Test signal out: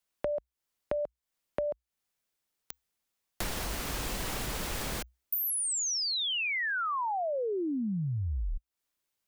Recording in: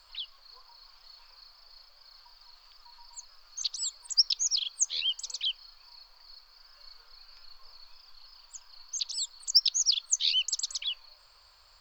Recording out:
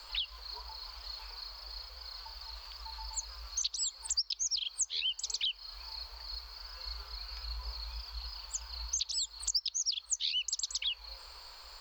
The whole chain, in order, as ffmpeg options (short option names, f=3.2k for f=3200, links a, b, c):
-af "acompressor=threshold=-41dB:ratio=6,afreqshift=-62,volume=9dB"